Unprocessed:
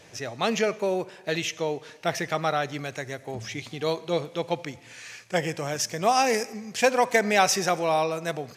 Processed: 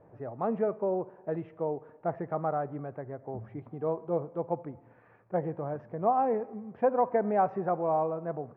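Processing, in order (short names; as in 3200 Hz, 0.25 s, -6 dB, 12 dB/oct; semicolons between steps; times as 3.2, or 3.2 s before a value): LPF 1100 Hz 24 dB/oct; gain -3.5 dB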